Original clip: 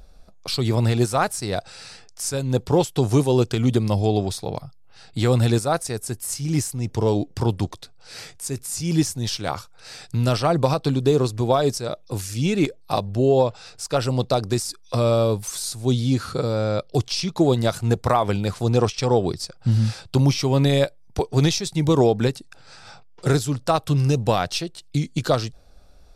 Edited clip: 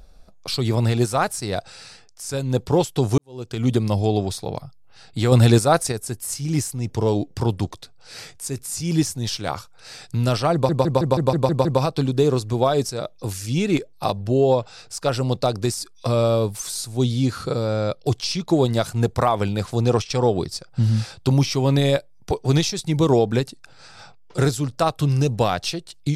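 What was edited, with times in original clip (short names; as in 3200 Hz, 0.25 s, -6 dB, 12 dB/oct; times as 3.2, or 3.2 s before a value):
1.69–2.29 fade out, to -7 dB
3.18–3.68 fade in quadratic
5.32–5.92 gain +5 dB
10.53 stutter 0.16 s, 8 plays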